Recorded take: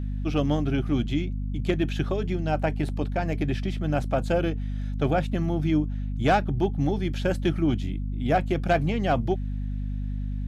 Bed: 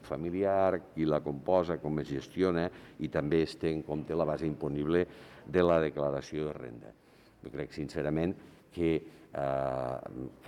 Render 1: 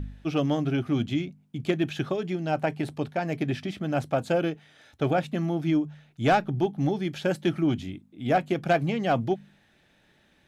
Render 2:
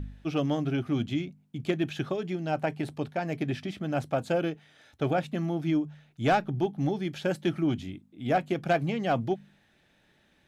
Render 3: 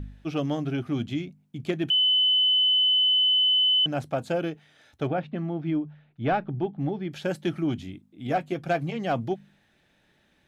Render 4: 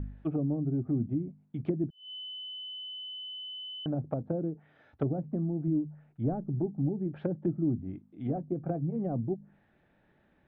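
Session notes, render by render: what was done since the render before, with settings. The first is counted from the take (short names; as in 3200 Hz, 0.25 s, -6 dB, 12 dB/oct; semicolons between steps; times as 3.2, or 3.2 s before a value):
de-hum 50 Hz, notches 5
gain -2.5 dB
1.9–3.86 bleep 3020 Hz -18 dBFS; 5.07–7.12 air absorption 300 m; 8.27–8.96 notch comb 210 Hz
LPF 1500 Hz 12 dB/oct; treble ducked by the level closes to 330 Hz, closed at -26 dBFS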